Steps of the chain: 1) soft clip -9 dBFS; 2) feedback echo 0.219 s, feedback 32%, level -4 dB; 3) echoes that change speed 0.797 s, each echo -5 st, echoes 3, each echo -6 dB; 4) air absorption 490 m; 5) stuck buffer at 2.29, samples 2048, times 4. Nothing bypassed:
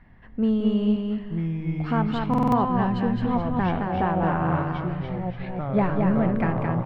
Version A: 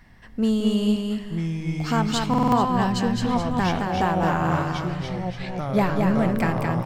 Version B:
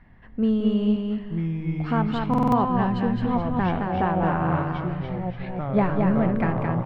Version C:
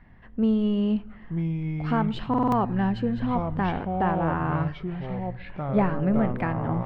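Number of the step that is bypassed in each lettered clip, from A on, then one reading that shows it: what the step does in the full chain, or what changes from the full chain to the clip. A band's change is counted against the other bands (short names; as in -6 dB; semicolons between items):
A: 4, 4 kHz band +9.5 dB; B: 1, distortion -27 dB; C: 2, momentary loudness spread change +1 LU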